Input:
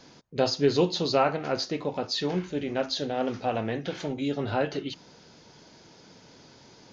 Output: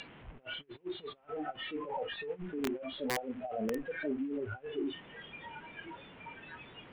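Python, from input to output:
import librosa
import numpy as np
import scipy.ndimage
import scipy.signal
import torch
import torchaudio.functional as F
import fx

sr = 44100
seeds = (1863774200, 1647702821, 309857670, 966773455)

y = fx.delta_mod(x, sr, bps=16000, step_db=-25.0)
y = fx.over_compress(y, sr, threshold_db=-29.0, ratio=-0.5)
y = fx.noise_reduce_blind(y, sr, reduce_db=22)
y = fx.air_absorb(y, sr, metres=90.0)
y = (np.mod(10.0 ** (24.0 / 20.0) * y + 1.0, 2.0) - 1.0) / 10.0 ** (24.0 / 20.0)
y = y * 10.0 ** (-1.5 / 20.0)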